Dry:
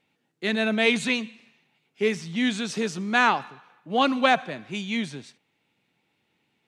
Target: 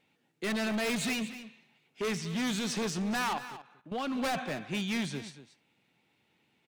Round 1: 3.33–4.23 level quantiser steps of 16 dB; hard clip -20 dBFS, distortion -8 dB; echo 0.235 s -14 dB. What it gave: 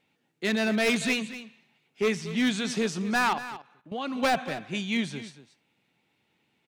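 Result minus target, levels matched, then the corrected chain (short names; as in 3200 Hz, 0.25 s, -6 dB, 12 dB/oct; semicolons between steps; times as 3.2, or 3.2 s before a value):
hard clip: distortion -6 dB
3.33–4.23 level quantiser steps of 16 dB; hard clip -29.5 dBFS, distortion -3 dB; echo 0.235 s -14 dB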